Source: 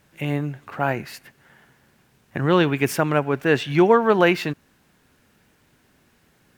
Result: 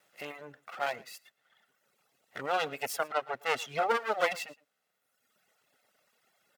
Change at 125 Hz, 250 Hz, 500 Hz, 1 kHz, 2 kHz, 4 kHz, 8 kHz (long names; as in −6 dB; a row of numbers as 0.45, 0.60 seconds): −29.5, −27.5, −14.0, −8.0, −9.5, −8.0, −6.0 decibels